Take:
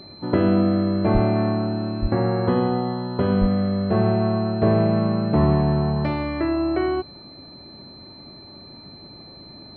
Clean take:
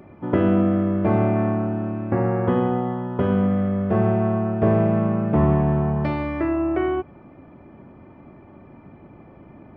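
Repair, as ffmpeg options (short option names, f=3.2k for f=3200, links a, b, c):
-filter_complex "[0:a]bandreject=f=4.1k:w=30,asplit=3[a][b][c];[a]afade=t=out:st=1.13:d=0.02[d];[b]highpass=f=140:w=0.5412,highpass=f=140:w=1.3066,afade=t=in:st=1.13:d=0.02,afade=t=out:st=1.25:d=0.02[e];[c]afade=t=in:st=1.25:d=0.02[f];[d][e][f]amix=inputs=3:normalize=0,asplit=3[g][h][i];[g]afade=t=out:st=2.01:d=0.02[j];[h]highpass=f=140:w=0.5412,highpass=f=140:w=1.3066,afade=t=in:st=2.01:d=0.02,afade=t=out:st=2.13:d=0.02[k];[i]afade=t=in:st=2.13:d=0.02[l];[j][k][l]amix=inputs=3:normalize=0,asplit=3[m][n][o];[m]afade=t=out:st=3.4:d=0.02[p];[n]highpass=f=140:w=0.5412,highpass=f=140:w=1.3066,afade=t=in:st=3.4:d=0.02,afade=t=out:st=3.52:d=0.02[q];[o]afade=t=in:st=3.52:d=0.02[r];[p][q][r]amix=inputs=3:normalize=0"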